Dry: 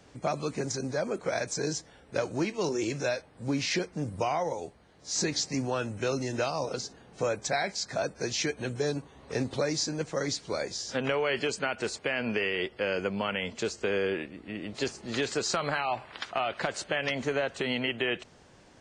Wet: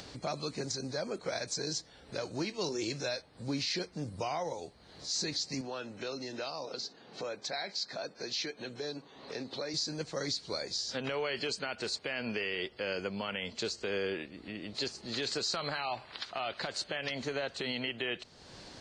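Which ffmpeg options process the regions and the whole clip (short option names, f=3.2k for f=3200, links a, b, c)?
-filter_complex "[0:a]asettb=1/sr,asplit=3[a][b][c];[a]atrim=end=5.614[d];[b]atrim=start=5.61:end=9.74,asetpts=PTS-STARTPTS,afade=t=in:d=0.004:c=qsin,afade=t=out:st=4.126:d=0.004:c=qsin,highpass=210,lowpass=5.1k,acompressor=threshold=-36dB:ratio=1.5:attack=3.2:release=140:knee=1:detection=peak[e];[c]atrim=start=9.736[f];[d][e]acrossfade=d=0.004:c1=hsin:c2=qsin[g];[g][f]acrossfade=d=0.004:c1=qsin:c2=hsin,equalizer=f=4.3k:t=o:w=0.6:g=12.5,alimiter=limit=-18.5dB:level=0:latency=1:release=83,acompressor=mode=upward:threshold=-33dB:ratio=2.5,volume=-5.5dB"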